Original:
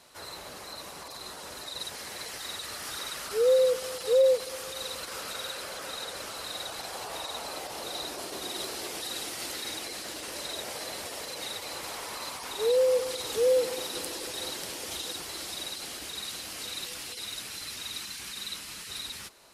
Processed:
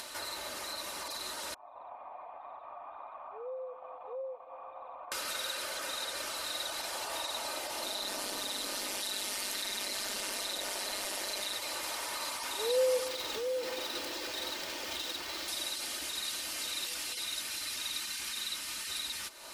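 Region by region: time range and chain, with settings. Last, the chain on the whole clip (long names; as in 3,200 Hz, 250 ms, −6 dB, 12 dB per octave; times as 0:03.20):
0:01.54–0:05.12: formant resonators in series a + notch filter 360 Hz, Q 9.8
0:07.83–0:11.54: ring modulation 99 Hz + envelope flattener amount 100%
0:13.08–0:15.48: running median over 5 samples + downward compressor 4 to 1, threshold −27 dBFS
whole clip: low-shelf EQ 480 Hz −8.5 dB; comb filter 3.3 ms, depth 43%; upward compression, threshold −34 dBFS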